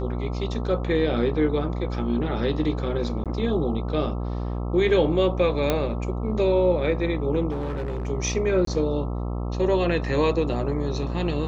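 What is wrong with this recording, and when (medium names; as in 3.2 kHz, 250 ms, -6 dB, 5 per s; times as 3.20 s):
buzz 60 Hz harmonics 22 -28 dBFS
3.24–3.26 s: dropout 17 ms
5.70 s: pop -8 dBFS
7.50–8.07 s: clipped -25 dBFS
8.65–8.67 s: dropout 23 ms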